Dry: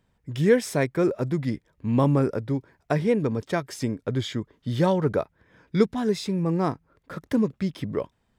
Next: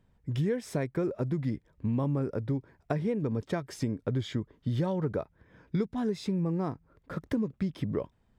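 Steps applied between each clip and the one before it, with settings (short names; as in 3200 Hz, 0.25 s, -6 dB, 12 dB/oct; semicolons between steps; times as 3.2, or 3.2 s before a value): tilt -1.5 dB/oct; compressor 6:1, threshold -24 dBFS, peak gain reduction 12.5 dB; gain -2.5 dB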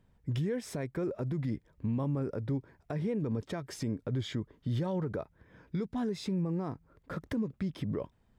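limiter -25.5 dBFS, peak gain reduction 9.5 dB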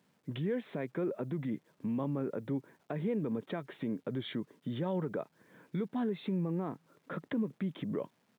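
downsampling 8000 Hz; requantised 12-bit, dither none; HPF 160 Hz 24 dB/oct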